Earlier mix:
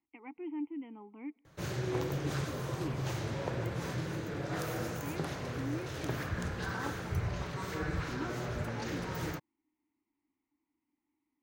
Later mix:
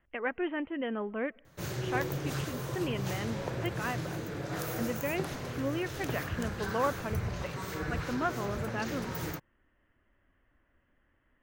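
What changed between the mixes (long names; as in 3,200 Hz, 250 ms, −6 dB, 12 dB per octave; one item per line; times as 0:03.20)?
speech: remove formant filter u
master: add high-shelf EQ 10,000 Hz +10.5 dB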